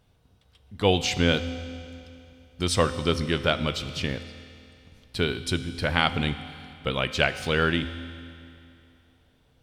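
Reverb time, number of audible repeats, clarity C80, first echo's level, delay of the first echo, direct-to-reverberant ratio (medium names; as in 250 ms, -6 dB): 2.6 s, no echo, 12.5 dB, no echo, no echo, 10.5 dB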